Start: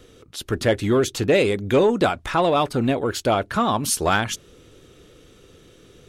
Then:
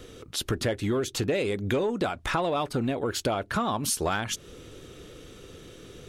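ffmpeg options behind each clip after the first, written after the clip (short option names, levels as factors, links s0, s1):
-af "acompressor=threshold=0.0355:ratio=5,volume=1.5"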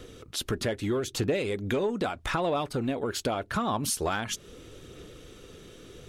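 -af "aphaser=in_gain=1:out_gain=1:delay=5:decay=0.22:speed=0.8:type=sinusoidal,volume=0.794"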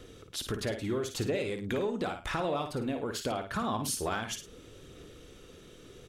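-af "aecho=1:1:55|105:0.422|0.15,volume=0.596"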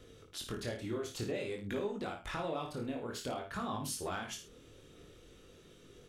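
-af "flanger=delay=19.5:depth=7.4:speed=0.52,volume=0.708"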